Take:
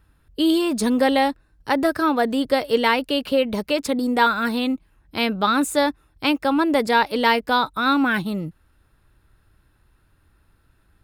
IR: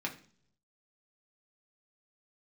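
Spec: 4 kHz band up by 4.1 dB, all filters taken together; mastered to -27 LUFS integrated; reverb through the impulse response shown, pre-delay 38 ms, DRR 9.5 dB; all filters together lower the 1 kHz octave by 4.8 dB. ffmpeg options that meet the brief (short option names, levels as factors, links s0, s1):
-filter_complex "[0:a]equalizer=f=1000:t=o:g=-6.5,equalizer=f=4000:t=o:g=5.5,asplit=2[s0][s1];[1:a]atrim=start_sample=2205,adelay=38[s2];[s1][s2]afir=irnorm=-1:irlink=0,volume=0.237[s3];[s0][s3]amix=inputs=2:normalize=0,volume=0.501"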